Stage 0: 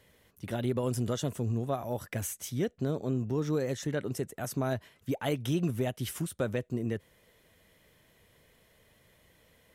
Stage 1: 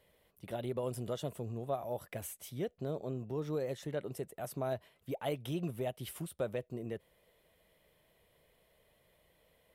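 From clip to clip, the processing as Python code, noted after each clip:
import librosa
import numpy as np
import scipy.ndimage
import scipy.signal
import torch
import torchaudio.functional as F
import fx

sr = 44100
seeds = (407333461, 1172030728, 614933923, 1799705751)

y = fx.graphic_eq_15(x, sr, hz=(100, 250, 630, 1600, 6300), db=(-7, -6, 4, -5, -9))
y = y * librosa.db_to_amplitude(-5.0)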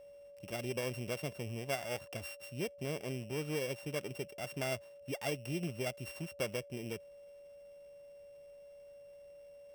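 y = np.r_[np.sort(x[:len(x) // 16 * 16].reshape(-1, 16), axis=1).ravel(), x[len(x) // 16 * 16:]]
y = y + 10.0 ** (-51.0 / 20.0) * np.sin(2.0 * np.pi * 570.0 * np.arange(len(y)) / sr)
y = y * librosa.db_to_amplitude(-1.0)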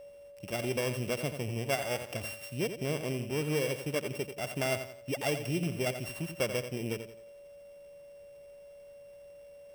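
y = fx.echo_feedback(x, sr, ms=87, feedback_pct=37, wet_db=-9.5)
y = y * librosa.db_to_amplitude(5.5)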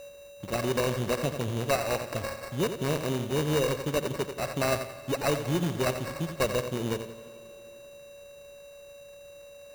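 y = fx.sample_hold(x, sr, seeds[0], rate_hz=3300.0, jitter_pct=0)
y = fx.rev_plate(y, sr, seeds[1], rt60_s=3.3, hf_ratio=0.85, predelay_ms=0, drr_db=15.5)
y = y * librosa.db_to_amplitude(4.5)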